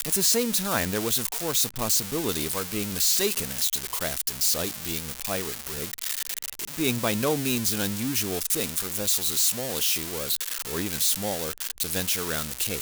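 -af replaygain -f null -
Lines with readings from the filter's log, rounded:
track_gain = +7.8 dB
track_peak = 0.179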